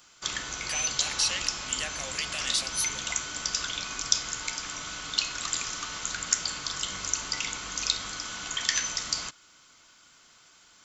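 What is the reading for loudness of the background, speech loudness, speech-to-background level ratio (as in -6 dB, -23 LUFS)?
-30.0 LUFS, -31.5 LUFS, -1.5 dB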